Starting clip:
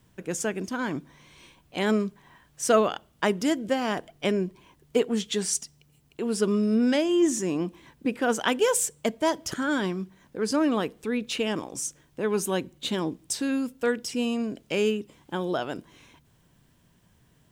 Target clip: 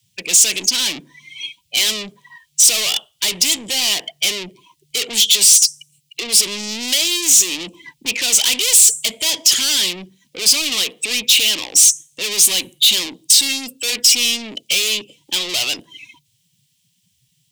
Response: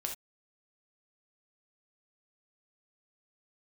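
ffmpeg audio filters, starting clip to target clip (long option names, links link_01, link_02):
-filter_complex "[0:a]afftdn=noise_reduction=33:noise_floor=-46,equalizer=frequency=110:width_type=o:width=0.86:gain=5,asplit=2[link_01][link_02];[link_02]highpass=frequency=720:poles=1,volume=38dB,asoftclip=type=tanh:threshold=-7dB[link_03];[link_01][link_03]amix=inputs=2:normalize=0,lowpass=frequency=7200:poles=1,volume=-6dB,acrossover=split=240|960[link_04][link_05][link_06];[link_06]aexciter=amount=11.5:drive=8.8:freq=2300[link_07];[link_04][link_05][link_07]amix=inputs=3:normalize=0,volume=-18dB"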